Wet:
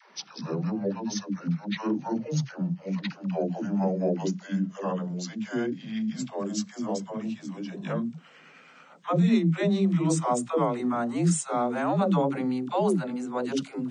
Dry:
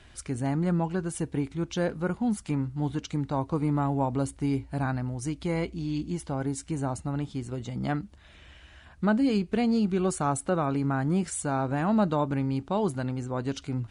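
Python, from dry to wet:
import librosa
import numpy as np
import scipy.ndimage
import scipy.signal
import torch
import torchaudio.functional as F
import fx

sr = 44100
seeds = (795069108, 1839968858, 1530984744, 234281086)

y = fx.pitch_glide(x, sr, semitones=-9.5, runs='ending unshifted')
y = scipy.signal.sosfilt(scipy.signal.ellip(4, 1.0, 50, 160.0, 'highpass', fs=sr, output='sos'), y)
y = fx.dispersion(y, sr, late='lows', ms=136.0, hz=340.0)
y = y * 10.0 ** (4.0 / 20.0)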